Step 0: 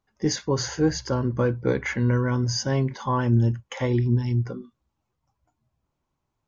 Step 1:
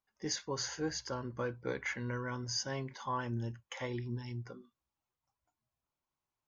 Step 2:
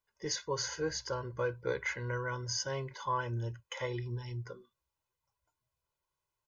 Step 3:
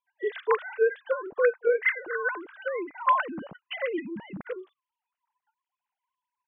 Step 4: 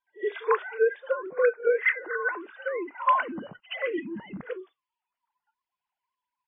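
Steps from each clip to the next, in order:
low-shelf EQ 500 Hz −11.5 dB; level −7.5 dB
comb filter 2 ms, depth 72%
three sine waves on the formant tracks; level +8.5 dB
spectral magnitudes quantised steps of 15 dB; echo ahead of the sound 72 ms −20 dB; level +1 dB; MP3 16 kbit/s 12,000 Hz

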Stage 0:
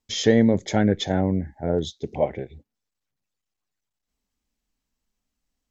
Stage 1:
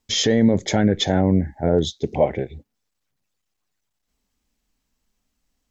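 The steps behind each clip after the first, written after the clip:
brickwall limiter −13.5 dBFS, peak gain reduction 9 dB
level +6.5 dB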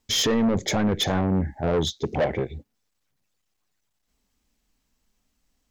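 soft clipping −19 dBFS, distortion −7 dB
level +1.5 dB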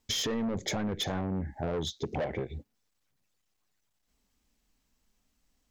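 downward compressor 6 to 1, threshold −28 dBFS, peak gain reduction 8.5 dB
level −2 dB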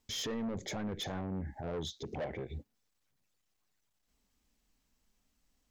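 brickwall limiter −31 dBFS, peak gain reduction 9 dB
level −2 dB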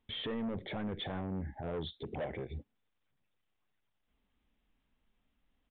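downsampling to 8,000 Hz

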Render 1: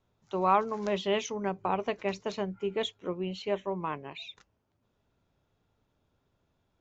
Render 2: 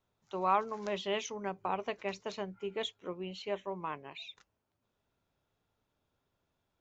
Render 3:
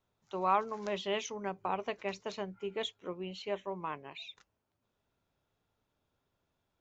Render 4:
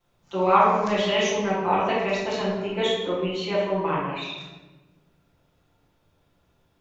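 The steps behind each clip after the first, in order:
low-shelf EQ 450 Hz −6 dB; level −3 dB
no processing that can be heard
convolution reverb RT60 1.2 s, pre-delay 6 ms, DRR −11.5 dB; level +2 dB

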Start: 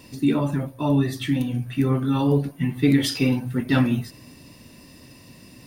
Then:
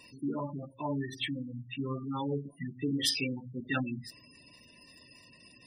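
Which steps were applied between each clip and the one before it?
gate on every frequency bin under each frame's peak −20 dB strong
tilt shelving filter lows −8 dB, about 710 Hz
notch filter 4,600 Hz, Q 16
level −8.5 dB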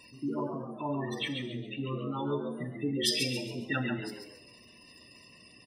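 on a send: echo with shifted repeats 137 ms, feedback 35%, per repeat +87 Hz, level −6 dB
on the sum: reverb whose tail is shaped and stops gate 350 ms falling, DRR 9 dB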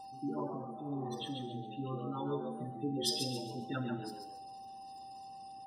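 steady tone 780 Hz −42 dBFS
Butterworth band-reject 2,200 Hz, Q 1.2
healed spectral selection 0:00.82–0:01.07, 560–2,900 Hz both
level −4.5 dB

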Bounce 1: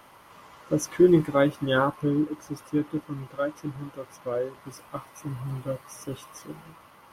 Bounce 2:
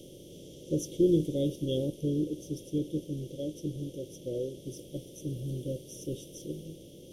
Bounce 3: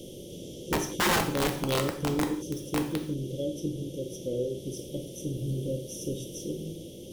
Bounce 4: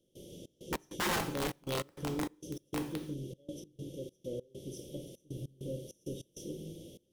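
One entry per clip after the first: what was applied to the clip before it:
compressor on every frequency bin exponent 0.6; elliptic band-stop filter 500–3,200 Hz, stop band 50 dB; low-shelf EQ 77 Hz +8.5 dB; level −7.5 dB
in parallel at −1.5 dB: downward compressor 16 to 1, threshold −37 dBFS, peak gain reduction 18.5 dB; on the sum: wrap-around overflow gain 20.5 dB; reverb whose tail is shaped and stops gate 200 ms falling, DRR 4 dB
gate pattern ".xx.x.xxxx.x" 99 BPM −24 dB; level −7.5 dB

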